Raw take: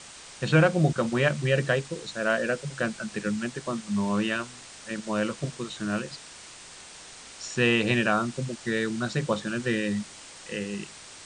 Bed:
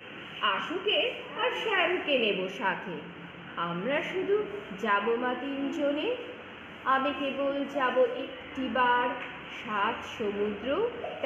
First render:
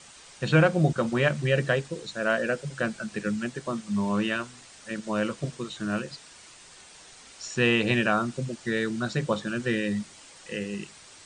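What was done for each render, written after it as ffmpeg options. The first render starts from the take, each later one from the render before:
-af "afftdn=nr=6:nf=-46"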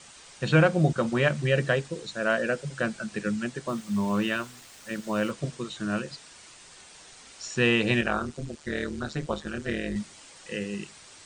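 -filter_complex "[0:a]asettb=1/sr,asplit=3[s0][s1][s2];[s0]atrim=end=3.684[s3];[s1]atrim=start=3.68:end=5.31,asetpts=PTS-STARTPTS,afade=t=in:d=0.004:c=qsin,afade=t=out:st=1.626:d=0.004:c=qsin,acrusher=bits=7:mix=0:aa=0.5[s4];[s2]atrim=start=5.306[s5];[s3][s4]acrossfade=d=0.004:c1=hsin:c2=qsin[s6];[s6][s5]acrossfade=d=0.004:c1=qsin:c2=hsin,asettb=1/sr,asplit=3[s7][s8][s9];[s7]atrim=end=8.014[s10];[s8]atrim=start=8.01:end=9.96,asetpts=PTS-STARTPTS,afade=t=in:d=0.004:c=qsin,afade=t=out:st=1.946:d=0.004:c=qsin,tremolo=f=150:d=0.857[s11];[s9]atrim=start=9.956[s12];[s10][s11]acrossfade=d=0.004:c1=hsin:c2=qsin[s13];[s13][s12]acrossfade=d=0.004:c1=qsin:c2=hsin"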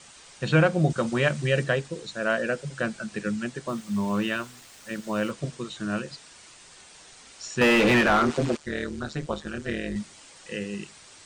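-filter_complex "[0:a]asettb=1/sr,asplit=3[s0][s1][s2];[s0]atrim=end=0.904[s3];[s1]atrim=start=0.9:end=1.64,asetpts=PTS-STARTPTS,afade=t=in:d=0.004:c=qsin,afade=t=out:st=0.736:d=0.004:c=qsin,highshelf=f=4900:g=5.5[s4];[s2]atrim=start=1.636[s5];[s3][s4]acrossfade=d=0.004:c1=hsin:c2=qsin[s6];[s6][s5]acrossfade=d=0.004:c1=qsin:c2=hsin,asettb=1/sr,asplit=3[s7][s8][s9];[s7]atrim=end=7.614[s10];[s8]atrim=start=7.61:end=8.57,asetpts=PTS-STARTPTS,afade=t=in:d=0.004:c=qsin,afade=t=out:st=0.956:d=0.004:c=qsin,asplit=2[s11][s12];[s12]highpass=f=720:p=1,volume=28.2,asoftclip=type=tanh:threshold=0.316[s13];[s11][s13]amix=inputs=2:normalize=0,lowpass=f=1500:p=1,volume=0.501[s14];[s9]atrim=start=8.566[s15];[s10][s14]acrossfade=d=0.004:c1=hsin:c2=qsin[s16];[s16][s15]acrossfade=d=0.004:c1=qsin:c2=hsin"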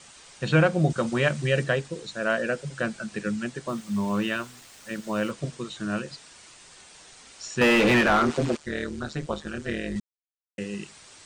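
-filter_complex "[0:a]asplit=3[s0][s1][s2];[s0]atrim=end=10,asetpts=PTS-STARTPTS,afade=t=out:st=9.996:d=0.004:c=hsin[s3];[s1]atrim=start=10:end=10.58,asetpts=PTS-STARTPTS,volume=0[s4];[s2]atrim=start=10.58,asetpts=PTS-STARTPTS,afade=t=in:d=0.004:c=hsin[s5];[s3][s4][s5]concat=n=3:v=0:a=1"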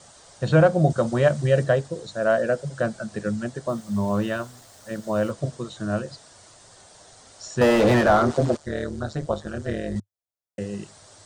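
-af "equalizer=f=100:t=o:w=0.67:g=11,equalizer=f=630:t=o:w=0.67:g=9,equalizer=f=2500:t=o:w=0.67:g=-10"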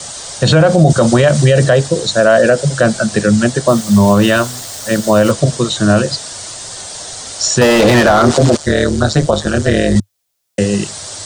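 -filter_complex "[0:a]acrossover=split=210|2500[s0][s1][s2];[s2]acontrast=83[s3];[s0][s1][s3]amix=inputs=3:normalize=0,alimiter=level_in=7.08:limit=0.891:release=50:level=0:latency=1"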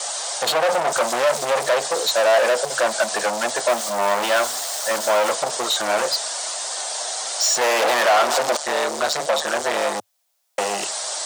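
-af "asoftclip=type=hard:threshold=0.158,highpass=f=700:t=q:w=1.7"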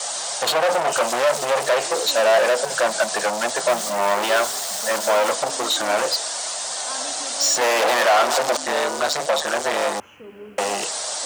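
-filter_complex "[1:a]volume=0.335[s0];[0:a][s0]amix=inputs=2:normalize=0"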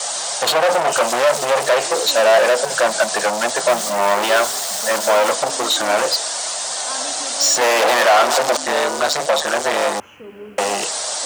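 -af "volume=1.5"

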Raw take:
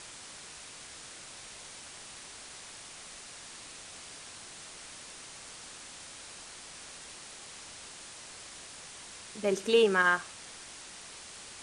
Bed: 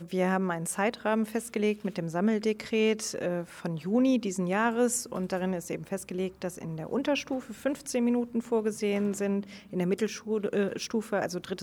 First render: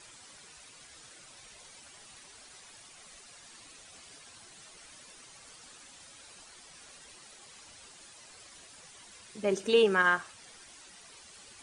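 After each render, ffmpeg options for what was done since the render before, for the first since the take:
-af "afftdn=nr=10:nf=-48"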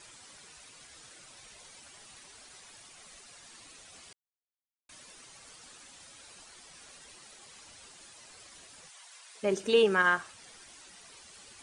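-filter_complex "[0:a]asplit=3[s0][s1][s2];[s0]afade=t=out:st=8.88:d=0.02[s3];[s1]highpass=f=640:w=0.5412,highpass=f=640:w=1.3066,afade=t=in:st=8.88:d=0.02,afade=t=out:st=9.42:d=0.02[s4];[s2]afade=t=in:st=9.42:d=0.02[s5];[s3][s4][s5]amix=inputs=3:normalize=0,asplit=3[s6][s7][s8];[s6]atrim=end=4.13,asetpts=PTS-STARTPTS,afade=t=out:st=4.126:d=0.004:c=hsin[s9];[s7]atrim=start=4.13:end=4.89,asetpts=PTS-STARTPTS,volume=0[s10];[s8]atrim=start=4.89,asetpts=PTS-STARTPTS,afade=t=in:d=0.004:c=hsin[s11];[s9][s10][s11]concat=n=3:v=0:a=1"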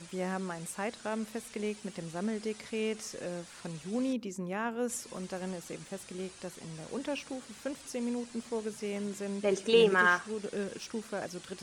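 -filter_complex "[1:a]volume=0.398[s0];[0:a][s0]amix=inputs=2:normalize=0"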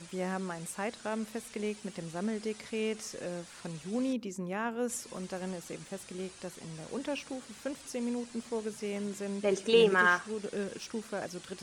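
-af anull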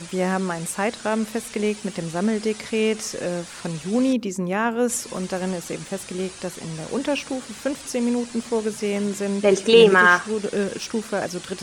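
-af "volume=3.98,alimiter=limit=0.708:level=0:latency=1"

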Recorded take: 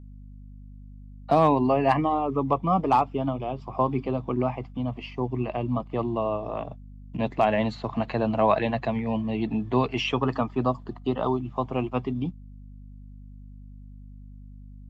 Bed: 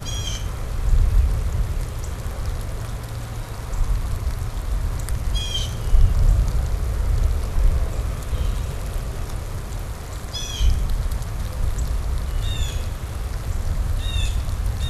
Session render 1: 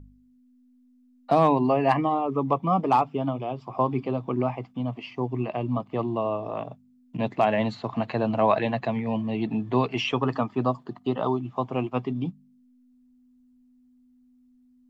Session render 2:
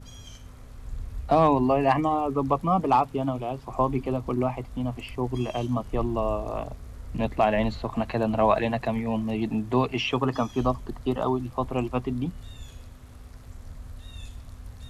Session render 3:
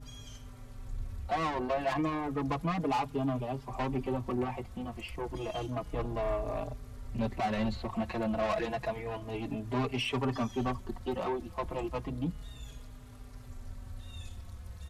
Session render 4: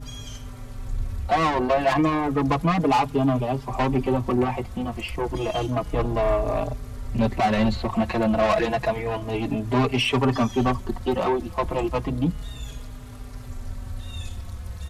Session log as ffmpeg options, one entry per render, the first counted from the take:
-af "bandreject=f=50:t=h:w=4,bandreject=f=100:t=h:w=4,bandreject=f=150:t=h:w=4,bandreject=f=200:t=h:w=4"
-filter_complex "[1:a]volume=0.126[s0];[0:a][s0]amix=inputs=2:normalize=0"
-filter_complex "[0:a]asoftclip=type=tanh:threshold=0.0631,asplit=2[s0][s1];[s1]adelay=4.5,afreqshift=-0.31[s2];[s0][s2]amix=inputs=2:normalize=1"
-af "volume=3.35"

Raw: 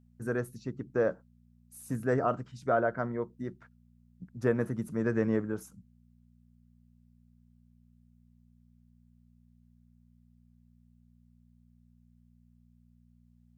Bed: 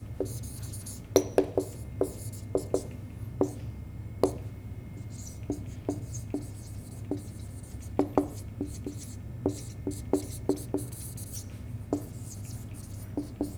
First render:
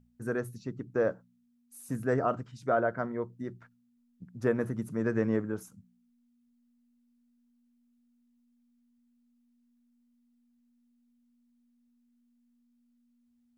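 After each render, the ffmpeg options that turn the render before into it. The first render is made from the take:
-af "bandreject=f=60:t=h:w=4,bandreject=f=120:t=h:w=4,bandreject=f=180:t=h:w=4"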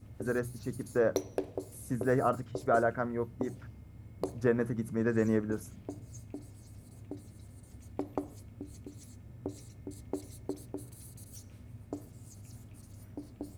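-filter_complex "[1:a]volume=0.316[s0];[0:a][s0]amix=inputs=2:normalize=0"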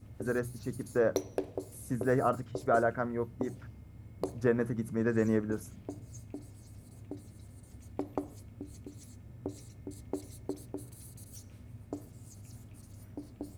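-af anull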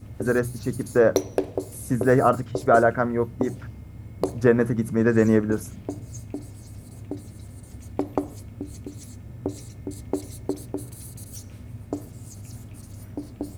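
-af "volume=3.16"

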